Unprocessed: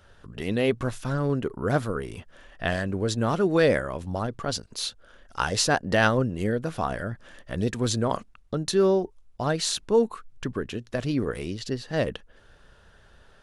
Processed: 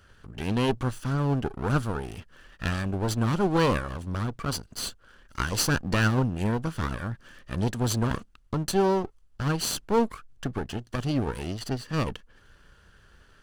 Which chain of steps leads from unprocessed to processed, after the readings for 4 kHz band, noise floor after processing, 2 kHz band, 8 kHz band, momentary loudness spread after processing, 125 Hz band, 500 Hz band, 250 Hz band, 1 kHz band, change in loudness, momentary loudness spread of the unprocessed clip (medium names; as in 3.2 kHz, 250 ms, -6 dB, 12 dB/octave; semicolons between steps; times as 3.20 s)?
-2.5 dB, -58 dBFS, -3.0 dB, -1.0 dB, 11 LU, +2.5 dB, -5.0 dB, -0.5 dB, -0.5 dB, -1.5 dB, 12 LU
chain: comb filter that takes the minimum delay 0.66 ms; dynamic bell 1.9 kHz, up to -5 dB, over -43 dBFS, Q 2